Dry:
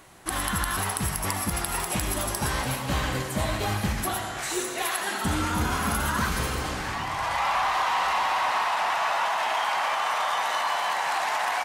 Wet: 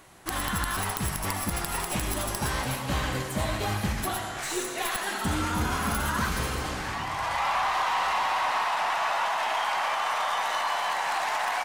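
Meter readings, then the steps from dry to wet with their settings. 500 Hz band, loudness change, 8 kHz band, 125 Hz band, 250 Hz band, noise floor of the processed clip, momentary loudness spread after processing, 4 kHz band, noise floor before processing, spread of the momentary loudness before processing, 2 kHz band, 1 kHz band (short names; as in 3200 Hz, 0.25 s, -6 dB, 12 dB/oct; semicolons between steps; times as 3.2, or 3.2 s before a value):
-1.5 dB, -1.5 dB, -3.0 dB, -1.5 dB, -1.5 dB, -35 dBFS, 5 LU, -1.5 dB, -33 dBFS, 5 LU, -1.5 dB, -1.5 dB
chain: tracing distortion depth 0.076 ms; gain -1.5 dB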